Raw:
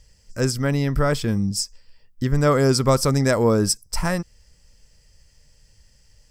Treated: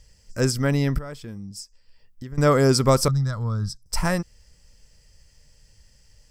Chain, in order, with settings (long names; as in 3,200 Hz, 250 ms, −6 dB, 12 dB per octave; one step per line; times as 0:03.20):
0:00.98–0:02.38: downward compressor 2 to 1, threshold −46 dBFS, peak gain reduction 17.5 dB
0:03.08–0:03.86: drawn EQ curve 150 Hz 0 dB, 320 Hz −24 dB, 800 Hz −18 dB, 1,300 Hz −6 dB, 2,500 Hz −27 dB, 3,700 Hz −6 dB, 8,800 Hz −22 dB